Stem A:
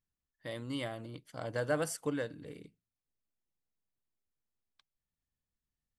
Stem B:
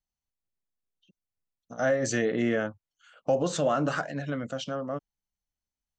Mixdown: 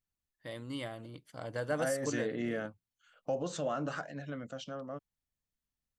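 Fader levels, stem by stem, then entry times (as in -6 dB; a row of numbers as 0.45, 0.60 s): -2.0, -9.0 dB; 0.00, 0.00 s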